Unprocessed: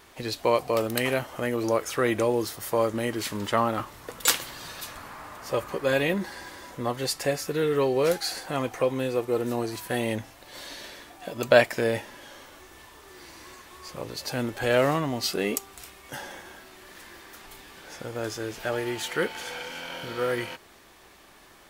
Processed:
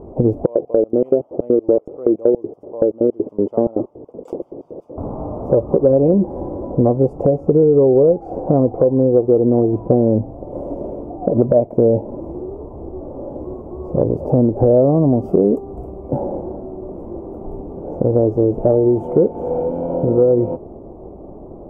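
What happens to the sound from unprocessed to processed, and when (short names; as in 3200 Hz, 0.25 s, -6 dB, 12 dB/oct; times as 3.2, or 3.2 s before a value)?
0.46–4.98 LFO band-pass square 5.3 Hz 400–4400 Hz
6.66–10.09 LPF 9300 Hz -> 3800 Hz
12.2–13.4 reverse
whole clip: inverse Chebyshev low-pass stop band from 1600 Hz, stop band 50 dB; compressor 5:1, threshold -34 dBFS; maximiser +24.5 dB; gain -1 dB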